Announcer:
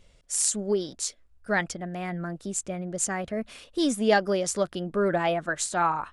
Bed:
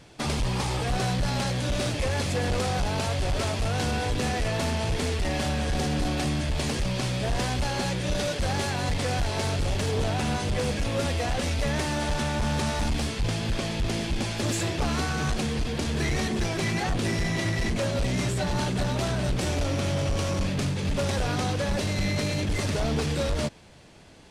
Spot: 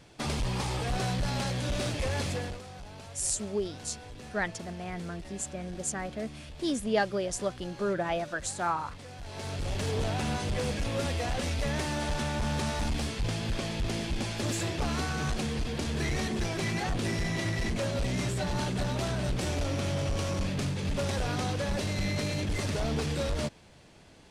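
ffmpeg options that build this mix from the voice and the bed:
-filter_complex "[0:a]adelay=2850,volume=-5.5dB[a];[1:a]volume=10.5dB,afade=t=out:st=2.27:d=0.33:silence=0.188365,afade=t=in:st=9.18:d=0.7:silence=0.188365[b];[a][b]amix=inputs=2:normalize=0"

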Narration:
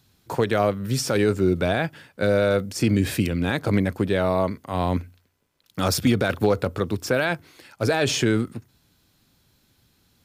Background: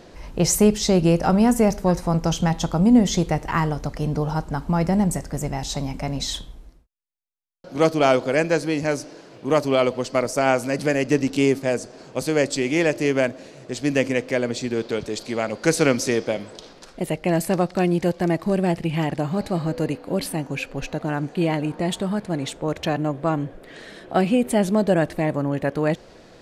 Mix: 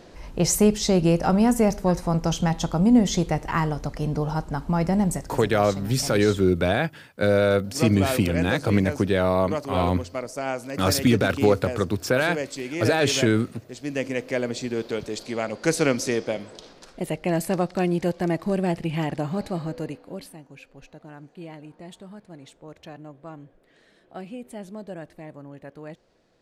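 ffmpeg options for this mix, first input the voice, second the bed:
-filter_complex "[0:a]adelay=5000,volume=0.5dB[a];[1:a]volume=4.5dB,afade=t=out:st=5.13:d=0.31:silence=0.421697,afade=t=in:st=13.82:d=0.57:silence=0.473151,afade=t=out:st=19.31:d=1.07:silence=0.177828[b];[a][b]amix=inputs=2:normalize=0"

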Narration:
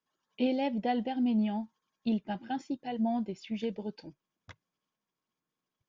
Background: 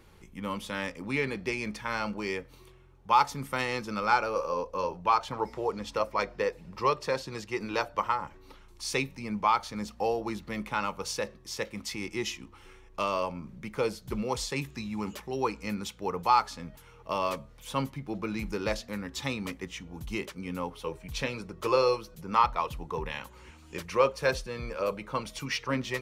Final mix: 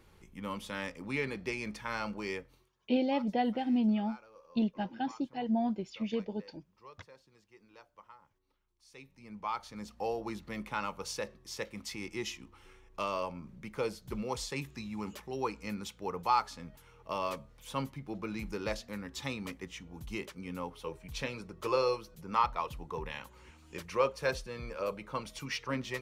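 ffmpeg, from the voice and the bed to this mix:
-filter_complex "[0:a]adelay=2500,volume=0dB[a];[1:a]volume=17.5dB,afade=t=out:st=2.35:d=0.35:silence=0.0749894,afade=t=in:st=8.92:d=1.32:silence=0.0794328[b];[a][b]amix=inputs=2:normalize=0"

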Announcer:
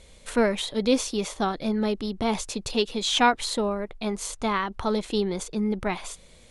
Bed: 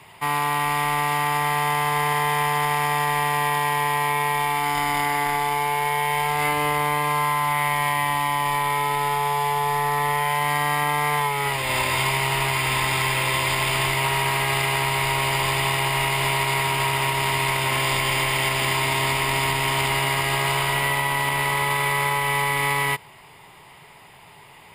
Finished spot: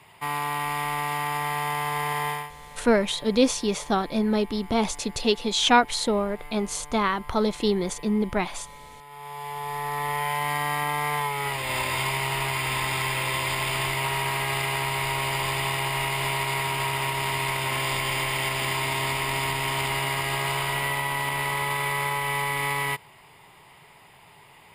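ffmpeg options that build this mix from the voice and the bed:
-filter_complex "[0:a]adelay=2500,volume=2dB[a];[1:a]volume=13.5dB,afade=t=out:st=2.28:d=0.23:silence=0.125893,afade=t=in:st=9.07:d=1.17:silence=0.112202[b];[a][b]amix=inputs=2:normalize=0"

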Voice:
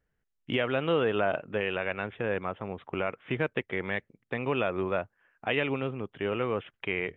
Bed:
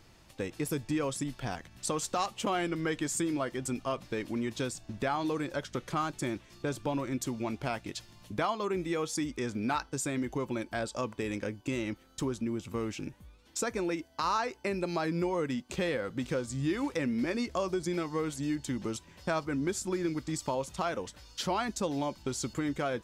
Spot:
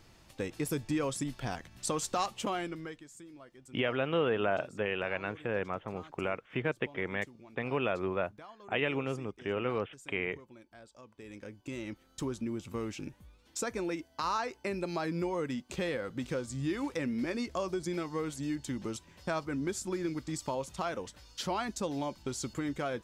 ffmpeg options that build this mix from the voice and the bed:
-filter_complex "[0:a]adelay=3250,volume=-3dB[a];[1:a]volume=17dB,afade=t=out:st=2.29:d=0.75:silence=0.105925,afade=t=in:st=11.07:d=1.24:silence=0.133352[b];[a][b]amix=inputs=2:normalize=0"

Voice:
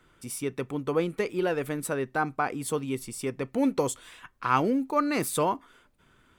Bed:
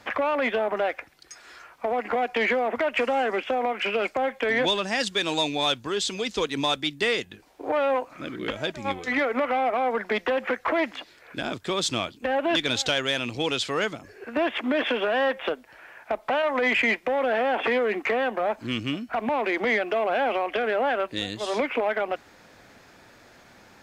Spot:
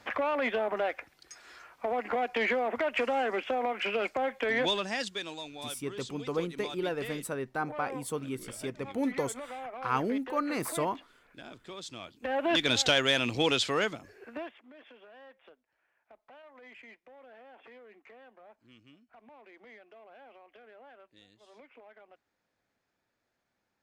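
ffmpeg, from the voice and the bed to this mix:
-filter_complex "[0:a]adelay=5400,volume=-5.5dB[a];[1:a]volume=12dB,afade=t=out:st=4.78:d=0.6:silence=0.251189,afade=t=in:st=11.99:d=0.83:silence=0.141254,afade=t=out:st=13.51:d=1.06:silence=0.0334965[b];[a][b]amix=inputs=2:normalize=0"

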